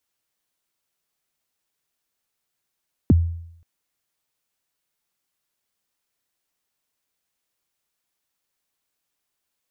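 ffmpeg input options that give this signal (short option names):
-f lavfi -i "aevalsrc='0.376*pow(10,-3*t/0.72)*sin(2*PI*(350*0.025/log(84/350)*(exp(log(84/350)*min(t,0.025)/0.025)-1)+84*max(t-0.025,0)))':d=0.53:s=44100"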